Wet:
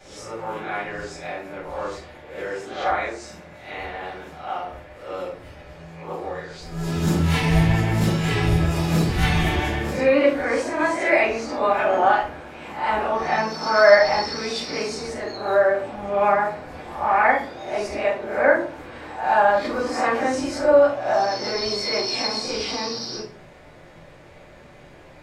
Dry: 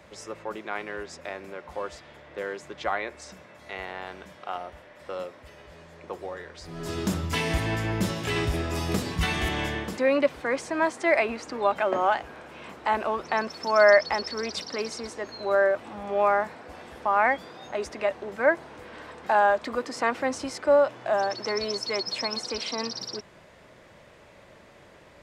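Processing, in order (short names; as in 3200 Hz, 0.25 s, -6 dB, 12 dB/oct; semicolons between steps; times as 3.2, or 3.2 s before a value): spectral swells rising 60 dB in 0.52 s; vibrato 7.4 Hz 37 cents; shoebox room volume 310 m³, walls furnished, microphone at 7.6 m; gain -9 dB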